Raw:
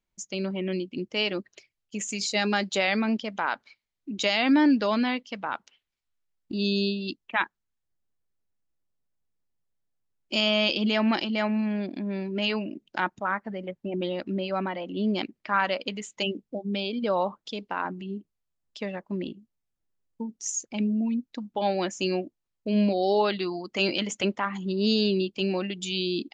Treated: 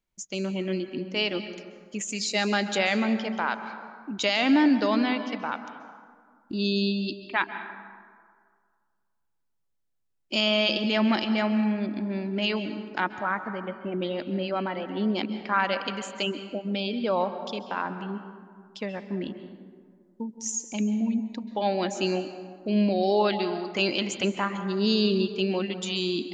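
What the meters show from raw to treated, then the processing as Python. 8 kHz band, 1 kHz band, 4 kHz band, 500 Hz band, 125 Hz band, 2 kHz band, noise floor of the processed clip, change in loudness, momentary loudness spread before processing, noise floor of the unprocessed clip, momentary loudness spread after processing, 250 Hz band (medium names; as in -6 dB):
0.0 dB, +0.5 dB, +0.5 dB, +0.5 dB, +0.5 dB, +0.5 dB, -74 dBFS, +0.5 dB, 12 LU, -83 dBFS, 13 LU, +0.5 dB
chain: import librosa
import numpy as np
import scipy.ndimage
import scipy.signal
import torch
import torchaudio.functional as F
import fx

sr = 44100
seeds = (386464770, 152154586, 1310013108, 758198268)

y = fx.rev_plate(x, sr, seeds[0], rt60_s=1.9, hf_ratio=0.45, predelay_ms=120, drr_db=9.5)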